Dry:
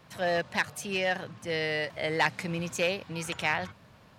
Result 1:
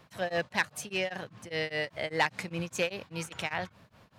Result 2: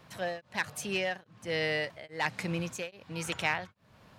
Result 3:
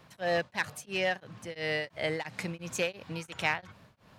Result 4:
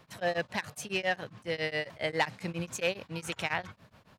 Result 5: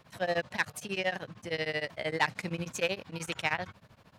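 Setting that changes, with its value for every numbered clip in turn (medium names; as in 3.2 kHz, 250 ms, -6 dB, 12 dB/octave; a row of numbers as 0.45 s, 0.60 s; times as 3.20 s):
tremolo of two beating tones, nulls at: 5 Hz, 1.2 Hz, 2.9 Hz, 7.3 Hz, 13 Hz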